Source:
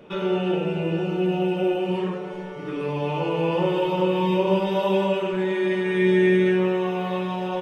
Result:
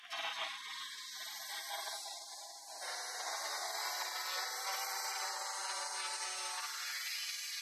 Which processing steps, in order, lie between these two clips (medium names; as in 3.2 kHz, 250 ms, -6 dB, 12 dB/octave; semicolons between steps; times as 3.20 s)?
high-pass sweep 490 Hz -> 3.4 kHz, 0.06–2.86 s; on a send: flutter echo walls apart 8.6 m, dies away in 0.8 s; on the sum: spring tank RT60 3.9 s, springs 48 ms, chirp 45 ms, DRR 6 dB; in parallel at -3 dB: gain riding within 4 dB; on the sum: high-pass 310 Hz 12 dB/octave; peak limiter -18.5 dBFS, peak gain reduction 8 dB; dynamic bell 2.9 kHz, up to +4 dB, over -37 dBFS, Q 0.83; spectral gate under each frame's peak -30 dB weak; high-pass sweep 750 Hz -> 2.3 kHz, 6.42–7.14 s; trim +7.5 dB; Vorbis 128 kbps 32 kHz